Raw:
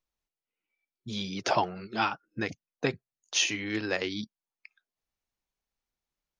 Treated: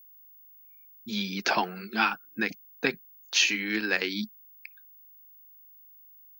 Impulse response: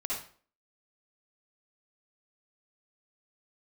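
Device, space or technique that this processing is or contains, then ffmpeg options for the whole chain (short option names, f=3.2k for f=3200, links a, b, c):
old television with a line whistle: -af "highpass=f=180:w=0.5412,highpass=f=180:w=1.3066,equalizer=f=210:t=q:w=4:g=6,equalizer=f=600:t=q:w=4:g=-6,equalizer=f=1.6k:t=q:w=4:g=8,equalizer=f=2.4k:t=q:w=4:g=7,equalizer=f=4.3k:t=q:w=4:g=7,lowpass=f=8.7k:w=0.5412,lowpass=f=8.7k:w=1.3066,aeval=exprs='val(0)+0.00282*sin(2*PI*15625*n/s)':c=same"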